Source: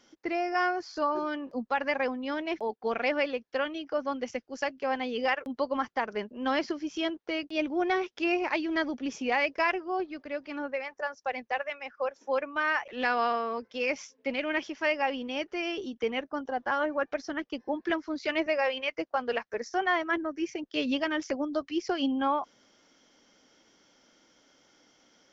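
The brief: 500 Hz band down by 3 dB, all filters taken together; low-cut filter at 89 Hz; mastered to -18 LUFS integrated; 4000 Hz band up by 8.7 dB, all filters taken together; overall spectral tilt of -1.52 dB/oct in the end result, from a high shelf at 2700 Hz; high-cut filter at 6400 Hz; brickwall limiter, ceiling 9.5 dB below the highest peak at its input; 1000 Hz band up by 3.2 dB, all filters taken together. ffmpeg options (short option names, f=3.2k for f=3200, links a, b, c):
-af "highpass=89,lowpass=6.4k,equalizer=f=500:t=o:g=-6,equalizer=f=1k:t=o:g=5,highshelf=f=2.7k:g=7,equalizer=f=4k:t=o:g=7,volume=13dB,alimiter=limit=-6dB:level=0:latency=1"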